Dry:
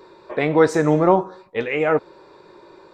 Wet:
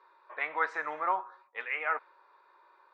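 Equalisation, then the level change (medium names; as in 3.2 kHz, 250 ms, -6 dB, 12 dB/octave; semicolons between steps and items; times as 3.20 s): dynamic bell 2.1 kHz, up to +7 dB, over -37 dBFS, Q 1.1; ladder band-pass 1.4 kHz, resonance 35%; 0.0 dB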